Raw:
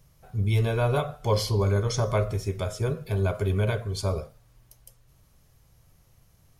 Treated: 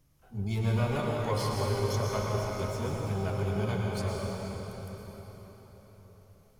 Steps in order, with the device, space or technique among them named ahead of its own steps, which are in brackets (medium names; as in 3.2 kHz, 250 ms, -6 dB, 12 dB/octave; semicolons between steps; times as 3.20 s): shimmer-style reverb (harmony voices +12 st -9 dB; reverberation RT60 4.7 s, pre-delay 102 ms, DRR -2.5 dB); trim -9 dB